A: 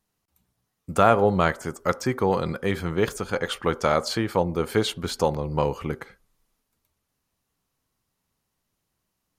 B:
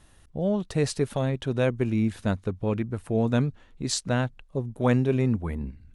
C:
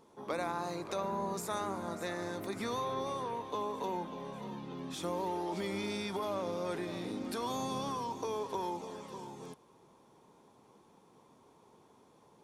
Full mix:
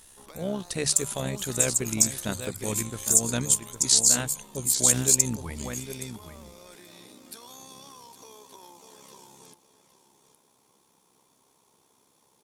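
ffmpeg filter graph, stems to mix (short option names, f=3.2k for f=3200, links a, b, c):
-filter_complex "[0:a]aemphasis=mode=production:type=riaa,alimiter=limit=-12dB:level=0:latency=1,bandpass=f=7.3k:t=q:w=5.2:csg=0,volume=-1dB,asplit=2[a][b];[1:a]bandreject=f=50:t=h:w=6,bandreject=f=100:t=h:w=6,bandreject=f=150:t=h:w=6,volume=-4dB,asplit=2[c][d];[d]volume=-10dB[e];[2:a]acompressor=threshold=-43dB:ratio=4,volume=-5dB,asplit=2[f][g];[g]volume=-13dB[h];[b]apad=whole_len=262044[i];[c][i]sidechaincompress=threshold=-34dB:ratio=8:attack=16:release=178[j];[e][h]amix=inputs=2:normalize=0,aecho=0:1:812:1[k];[a][j][f][k]amix=inputs=4:normalize=0,tremolo=f=66:d=0.519,crystalizer=i=6.5:c=0"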